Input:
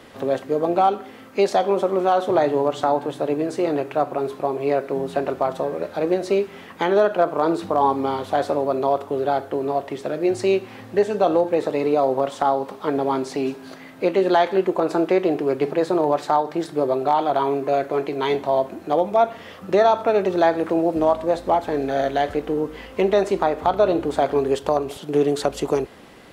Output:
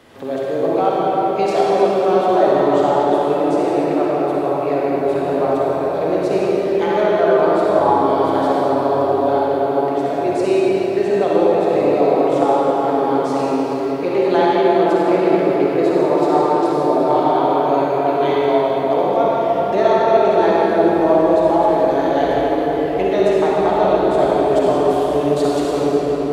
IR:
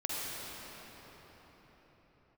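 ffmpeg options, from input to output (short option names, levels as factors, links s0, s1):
-filter_complex "[1:a]atrim=start_sample=2205[s0];[0:a][s0]afir=irnorm=-1:irlink=0,volume=0.841"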